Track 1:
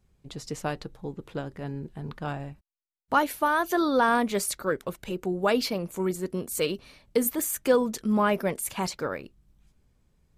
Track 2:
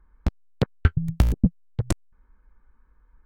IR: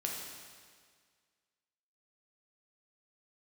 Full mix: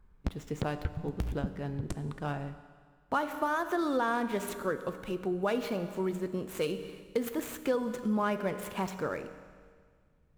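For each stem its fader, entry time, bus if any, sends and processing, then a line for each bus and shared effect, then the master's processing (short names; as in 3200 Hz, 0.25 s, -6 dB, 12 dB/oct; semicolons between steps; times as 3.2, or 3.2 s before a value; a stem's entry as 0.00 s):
-4.5 dB, 0.00 s, send -8 dB, median filter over 9 samples
-4.0 dB, 0.00 s, send -21 dB, auto duck -11 dB, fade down 0.90 s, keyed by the first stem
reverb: on, RT60 1.8 s, pre-delay 6 ms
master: compressor 2.5:1, threshold -28 dBFS, peak gain reduction 7 dB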